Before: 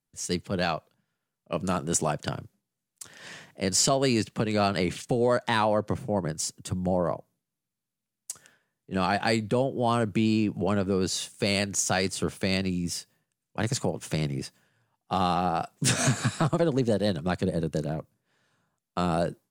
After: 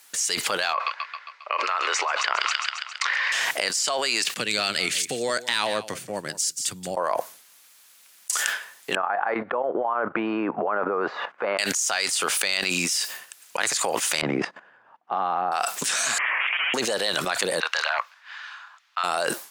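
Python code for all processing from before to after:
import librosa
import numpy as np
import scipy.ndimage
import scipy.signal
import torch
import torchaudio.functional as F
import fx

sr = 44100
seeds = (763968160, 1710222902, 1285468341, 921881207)

y = fx.chain(x, sr, fx.cabinet(low_hz=450.0, low_slope=24, high_hz=4200.0, hz=(670.0, 1100.0, 2100.0, 3300.0), db=(-5, 8, 9, -6)),
    fx.echo_wet_highpass(ms=135, feedback_pct=58, hz=2700.0, wet_db=-12.5), at=(0.73, 3.32))
y = fx.chain(y, sr, fx.tone_stack(knobs='10-0-1'),
    fx.echo_single(ms=178, db=-15.5), at=(4.34, 6.97))
y = fx.chain(y, sr, fx.low_shelf(hz=200.0, db=-10.5),
    fx.level_steps(step_db=13),
    fx.lowpass(hz=1300.0, slope=24), at=(8.95, 11.59))
y = fx.chain(y, sr, fx.lowpass(hz=1100.0, slope=12),
    fx.peak_eq(hz=220.0, db=7.0, octaves=1.3),
    fx.level_steps(step_db=16), at=(14.21, 15.52))
y = fx.chain(y, sr, fx.tube_stage(drive_db=36.0, bias=0.55),
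    fx.highpass(hz=1100.0, slope=12),
    fx.freq_invert(carrier_hz=3500), at=(16.18, 16.74))
y = fx.chain(y, sr, fx.highpass(hz=970.0, slope=24),
    fx.air_absorb(metres=230.0), at=(17.6, 19.04))
y = scipy.signal.sosfilt(scipy.signal.butter(2, 1100.0, 'highpass', fs=sr, output='sos'), y)
y = fx.env_flatten(y, sr, amount_pct=100)
y = y * 10.0 ** (-3.5 / 20.0)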